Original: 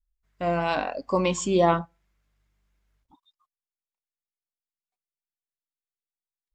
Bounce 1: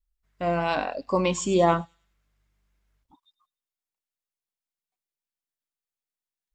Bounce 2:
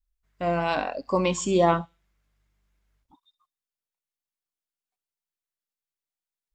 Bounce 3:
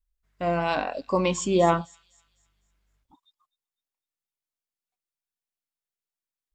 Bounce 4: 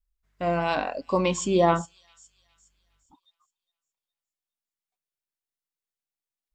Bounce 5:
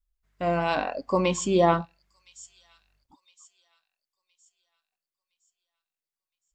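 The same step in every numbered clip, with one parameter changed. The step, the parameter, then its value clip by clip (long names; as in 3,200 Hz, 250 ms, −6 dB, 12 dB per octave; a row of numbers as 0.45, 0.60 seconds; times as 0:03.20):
delay with a high-pass on its return, delay time: 99, 67, 253, 412, 1,014 milliseconds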